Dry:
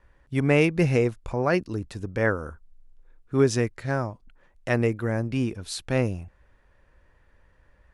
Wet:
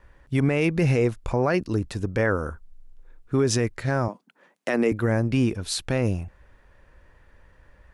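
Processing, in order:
0:04.08–0:04.92: Butterworth high-pass 180 Hz 36 dB per octave
brickwall limiter −17.5 dBFS, peak gain reduction 11 dB
level +5.5 dB

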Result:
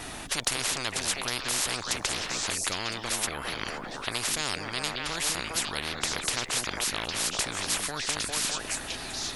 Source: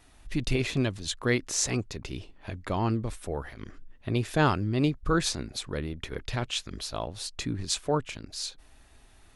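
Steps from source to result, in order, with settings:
echo through a band-pass that steps 202 ms, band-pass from 230 Hz, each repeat 1.4 octaves, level −3.5 dB
every bin compressed towards the loudest bin 10 to 1

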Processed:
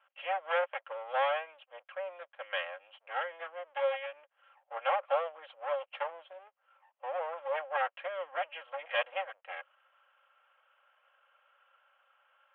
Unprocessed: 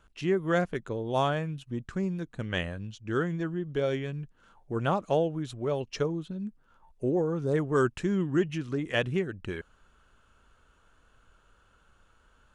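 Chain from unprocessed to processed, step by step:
lower of the sound and its delayed copy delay 3.7 ms
Chebyshev band-pass filter 540–3,200 Hz, order 5

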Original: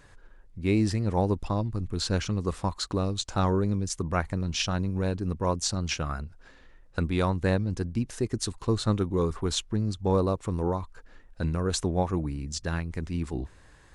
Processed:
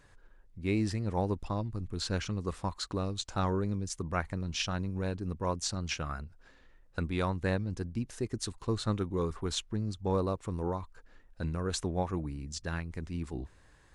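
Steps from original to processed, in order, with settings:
dynamic equaliser 1,900 Hz, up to +3 dB, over −39 dBFS, Q 0.77
level −6 dB

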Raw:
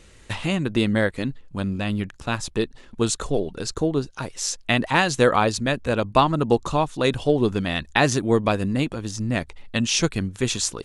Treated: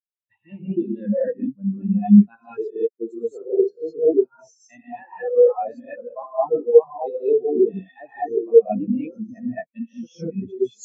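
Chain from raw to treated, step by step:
high-pass filter 400 Hz 6 dB per octave
reverb whose tail is shaped and stops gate 250 ms rising, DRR −6.5 dB
reversed playback
downward compressor 10 to 1, threshold −23 dBFS, peak gain reduction 17.5 dB
reversed playback
every bin expanded away from the loudest bin 4 to 1
level +9 dB

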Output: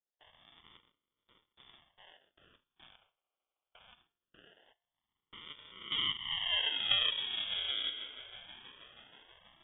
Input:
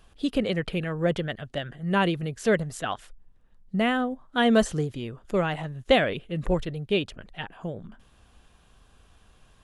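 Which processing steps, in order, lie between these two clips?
spectrum averaged block by block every 200 ms
downward compressor 6 to 1, threshold −35 dBFS, peak gain reduction 14.5 dB
parametric band 270 Hz +11 dB 1.5 octaves
echo that builds up and dies away 160 ms, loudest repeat 5, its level −16 dB
high-pass filter sweep 2,700 Hz → 94 Hz, 0:04.74–0:07.57
sample-and-hold swept by an LFO 37×, swing 60% 0.22 Hz
voice inversion scrambler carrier 3,500 Hz
low-pass that shuts in the quiet parts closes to 780 Hz, open at −25 dBFS
noise gate with hold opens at −45 dBFS
tuned comb filter 350 Hz, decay 0.65 s, mix 40%

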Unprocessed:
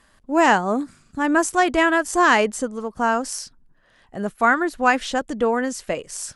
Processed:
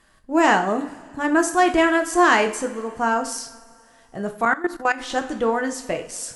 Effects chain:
coupled-rooms reverb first 0.44 s, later 2.5 s, from −19 dB, DRR 5 dB
0:04.45–0:05.10: output level in coarse steps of 16 dB
level −1.5 dB

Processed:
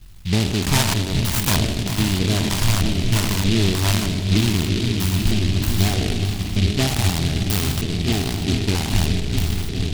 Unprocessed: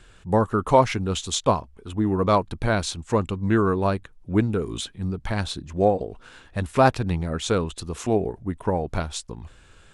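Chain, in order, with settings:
peak hold with a decay on every bin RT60 2.62 s
low-shelf EQ 220 Hz +9.5 dB
transient designer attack +7 dB, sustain −12 dB
brickwall limiter −3 dBFS, peak gain reduction 10 dB
high-frequency loss of the air 70 metres
phaser with its sweep stopped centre 1,900 Hz, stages 6
echo whose low-pass opens from repeat to repeat 422 ms, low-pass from 200 Hz, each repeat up 1 octave, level −3 dB
auto-filter low-pass square 1.6 Hz 500–3,900 Hz
short delay modulated by noise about 3,200 Hz, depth 0.24 ms
level −3 dB

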